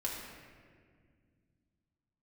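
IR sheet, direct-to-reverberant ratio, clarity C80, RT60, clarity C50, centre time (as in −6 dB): −4.0 dB, 3.0 dB, 1.9 s, 1.5 dB, 82 ms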